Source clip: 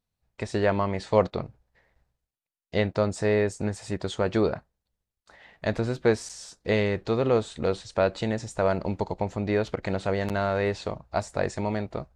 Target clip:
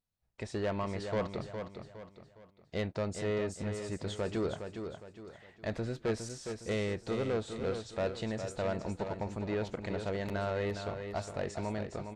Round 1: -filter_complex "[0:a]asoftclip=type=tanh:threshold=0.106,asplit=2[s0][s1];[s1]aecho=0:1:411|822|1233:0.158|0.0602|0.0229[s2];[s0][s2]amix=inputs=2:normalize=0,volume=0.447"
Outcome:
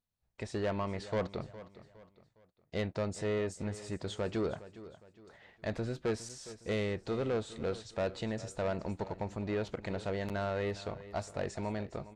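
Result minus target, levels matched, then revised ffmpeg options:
echo-to-direct -8.5 dB
-filter_complex "[0:a]asoftclip=type=tanh:threshold=0.106,asplit=2[s0][s1];[s1]aecho=0:1:411|822|1233|1644:0.422|0.16|0.0609|0.0231[s2];[s0][s2]amix=inputs=2:normalize=0,volume=0.447"

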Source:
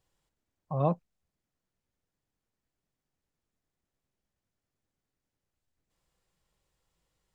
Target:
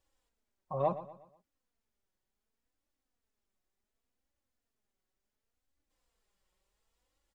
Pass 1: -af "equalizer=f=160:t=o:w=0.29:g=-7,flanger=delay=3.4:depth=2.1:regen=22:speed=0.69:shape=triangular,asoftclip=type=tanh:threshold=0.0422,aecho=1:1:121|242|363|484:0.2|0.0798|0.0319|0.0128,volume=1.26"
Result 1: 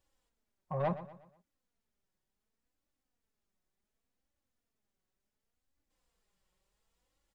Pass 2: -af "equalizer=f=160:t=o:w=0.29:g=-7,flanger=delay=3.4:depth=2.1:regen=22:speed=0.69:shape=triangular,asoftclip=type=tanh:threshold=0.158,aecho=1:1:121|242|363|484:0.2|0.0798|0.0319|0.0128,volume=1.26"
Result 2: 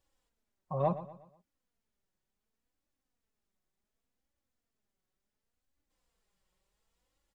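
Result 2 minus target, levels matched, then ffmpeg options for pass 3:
125 Hz band +4.5 dB
-af "equalizer=f=160:t=o:w=0.29:g=-19,flanger=delay=3.4:depth=2.1:regen=22:speed=0.69:shape=triangular,asoftclip=type=tanh:threshold=0.158,aecho=1:1:121|242|363|484:0.2|0.0798|0.0319|0.0128,volume=1.26"

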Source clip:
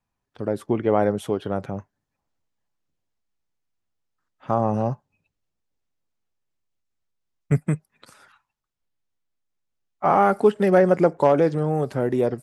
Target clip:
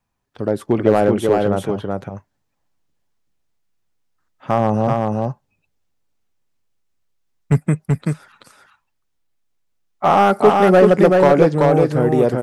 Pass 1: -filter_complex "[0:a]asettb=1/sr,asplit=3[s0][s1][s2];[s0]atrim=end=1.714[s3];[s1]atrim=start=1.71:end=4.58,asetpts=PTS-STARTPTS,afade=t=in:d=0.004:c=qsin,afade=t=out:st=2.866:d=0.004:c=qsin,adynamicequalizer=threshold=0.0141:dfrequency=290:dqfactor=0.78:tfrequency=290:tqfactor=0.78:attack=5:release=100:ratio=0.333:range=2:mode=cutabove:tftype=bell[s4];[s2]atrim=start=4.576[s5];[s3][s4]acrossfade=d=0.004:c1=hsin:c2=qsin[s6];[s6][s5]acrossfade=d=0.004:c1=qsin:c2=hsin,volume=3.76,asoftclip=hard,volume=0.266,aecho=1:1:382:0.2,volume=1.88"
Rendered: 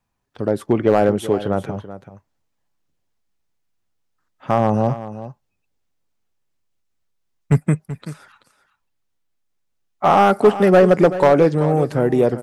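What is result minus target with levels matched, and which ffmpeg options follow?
echo-to-direct -11 dB
-filter_complex "[0:a]asettb=1/sr,asplit=3[s0][s1][s2];[s0]atrim=end=1.714[s3];[s1]atrim=start=1.71:end=4.58,asetpts=PTS-STARTPTS,afade=t=in:d=0.004:c=qsin,afade=t=out:st=2.866:d=0.004:c=qsin,adynamicequalizer=threshold=0.0141:dfrequency=290:dqfactor=0.78:tfrequency=290:tqfactor=0.78:attack=5:release=100:ratio=0.333:range=2:mode=cutabove:tftype=bell[s4];[s2]atrim=start=4.576[s5];[s3][s4]acrossfade=d=0.004:c1=hsin:c2=qsin[s6];[s6][s5]acrossfade=d=0.004:c1=qsin:c2=hsin,volume=3.76,asoftclip=hard,volume=0.266,aecho=1:1:382:0.708,volume=1.88"

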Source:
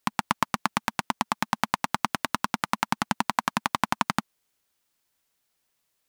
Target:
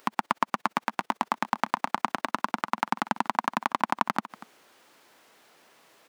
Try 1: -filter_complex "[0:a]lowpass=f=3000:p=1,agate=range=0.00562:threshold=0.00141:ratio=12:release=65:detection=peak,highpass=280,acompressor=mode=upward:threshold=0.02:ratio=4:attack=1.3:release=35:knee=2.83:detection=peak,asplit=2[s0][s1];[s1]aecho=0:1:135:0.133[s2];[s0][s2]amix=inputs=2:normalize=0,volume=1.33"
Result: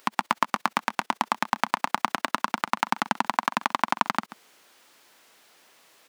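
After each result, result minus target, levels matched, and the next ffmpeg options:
echo 104 ms early; 4 kHz band +3.5 dB
-filter_complex "[0:a]lowpass=f=3000:p=1,agate=range=0.00562:threshold=0.00141:ratio=12:release=65:detection=peak,highpass=280,acompressor=mode=upward:threshold=0.02:ratio=4:attack=1.3:release=35:knee=2.83:detection=peak,asplit=2[s0][s1];[s1]aecho=0:1:239:0.133[s2];[s0][s2]amix=inputs=2:normalize=0,volume=1.33"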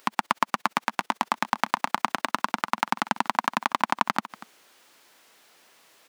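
4 kHz band +3.5 dB
-filter_complex "[0:a]lowpass=f=1200:p=1,agate=range=0.00562:threshold=0.00141:ratio=12:release=65:detection=peak,highpass=280,acompressor=mode=upward:threshold=0.02:ratio=4:attack=1.3:release=35:knee=2.83:detection=peak,asplit=2[s0][s1];[s1]aecho=0:1:239:0.133[s2];[s0][s2]amix=inputs=2:normalize=0,volume=1.33"

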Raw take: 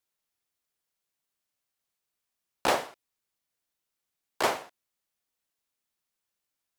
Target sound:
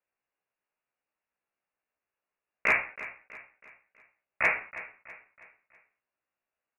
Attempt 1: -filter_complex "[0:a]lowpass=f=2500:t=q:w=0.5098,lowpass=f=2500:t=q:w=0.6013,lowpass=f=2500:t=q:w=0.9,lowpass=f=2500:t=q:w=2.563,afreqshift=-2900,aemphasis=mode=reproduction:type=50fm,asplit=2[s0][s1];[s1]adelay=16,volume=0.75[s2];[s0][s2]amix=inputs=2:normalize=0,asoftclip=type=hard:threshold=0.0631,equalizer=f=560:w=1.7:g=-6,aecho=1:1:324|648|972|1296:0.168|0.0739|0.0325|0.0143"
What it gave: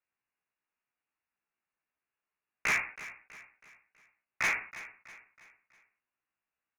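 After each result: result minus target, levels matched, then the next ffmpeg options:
hard clipper: distortion +19 dB; 500 Hz band -6.5 dB
-filter_complex "[0:a]lowpass=f=2500:t=q:w=0.5098,lowpass=f=2500:t=q:w=0.6013,lowpass=f=2500:t=q:w=0.9,lowpass=f=2500:t=q:w=2.563,afreqshift=-2900,aemphasis=mode=reproduction:type=50fm,asplit=2[s0][s1];[s1]adelay=16,volume=0.75[s2];[s0][s2]amix=inputs=2:normalize=0,asoftclip=type=hard:threshold=0.188,equalizer=f=560:w=1.7:g=-6,aecho=1:1:324|648|972|1296:0.168|0.0739|0.0325|0.0143"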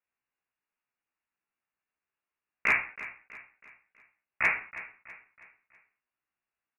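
500 Hz band -6.5 dB
-filter_complex "[0:a]lowpass=f=2500:t=q:w=0.5098,lowpass=f=2500:t=q:w=0.6013,lowpass=f=2500:t=q:w=0.9,lowpass=f=2500:t=q:w=2.563,afreqshift=-2900,aemphasis=mode=reproduction:type=50fm,asplit=2[s0][s1];[s1]adelay=16,volume=0.75[s2];[s0][s2]amix=inputs=2:normalize=0,asoftclip=type=hard:threshold=0.188,equalizer=f=560:w=1.7:g=3,aecho=1:1:324|648|972|1296:0.168|0.0739|0.0325|0.0143"

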